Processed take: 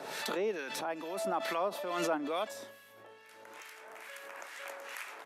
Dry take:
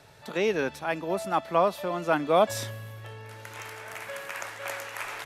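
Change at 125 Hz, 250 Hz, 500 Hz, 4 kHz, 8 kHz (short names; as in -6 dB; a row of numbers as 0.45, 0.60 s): -17.0, -7.5, -9.0, -4.0, -5.0 dB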